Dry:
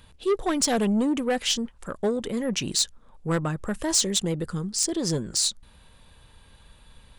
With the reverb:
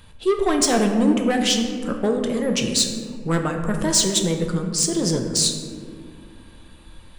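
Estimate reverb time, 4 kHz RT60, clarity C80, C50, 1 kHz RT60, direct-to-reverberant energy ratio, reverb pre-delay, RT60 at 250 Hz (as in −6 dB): 2.1 s, 1.0 s, 6.5 dB, 5.5 dB, 1.8 s, 3.0 dB, 6 ms, 3.4 s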